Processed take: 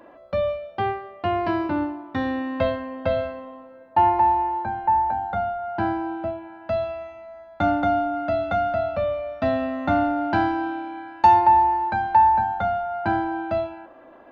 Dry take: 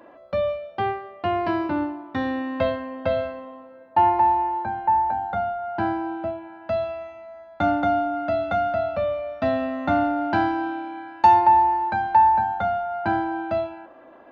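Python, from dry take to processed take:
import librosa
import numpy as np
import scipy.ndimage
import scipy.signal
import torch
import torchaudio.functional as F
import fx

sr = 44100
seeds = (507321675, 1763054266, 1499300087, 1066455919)

y = fx.low_shelf(x, sr, hz=63.0, db=8.5)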